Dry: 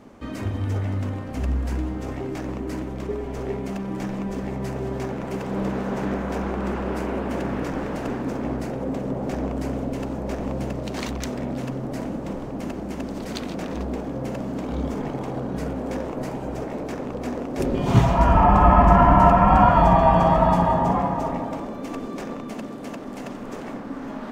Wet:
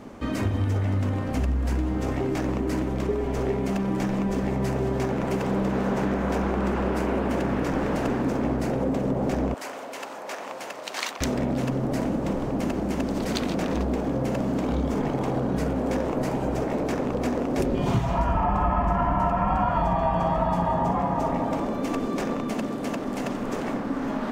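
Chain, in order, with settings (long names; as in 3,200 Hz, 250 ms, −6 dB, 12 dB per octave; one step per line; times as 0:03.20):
0:09.54–0:11.21: high-pass filter 960 Hz 12 dB per octave
downward compressor 6 to 1, threshold −26 dBFS, peak gain reduction 15.5 dB
level +5 dB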